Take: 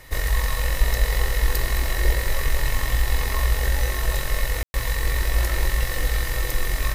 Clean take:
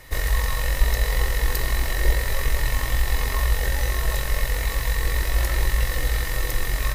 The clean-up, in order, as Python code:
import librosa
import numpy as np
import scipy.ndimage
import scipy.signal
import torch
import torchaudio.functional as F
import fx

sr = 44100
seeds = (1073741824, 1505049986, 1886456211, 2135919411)

y = fx.fix_ambience(x, sr, seeds[0], print_start_s=0.0, print_end_s=0.5, start_s=4.63, end_s=4.74)
y = fx.fix_echo_inverse(y, sr, delay_ms=214, level_db=-10.0)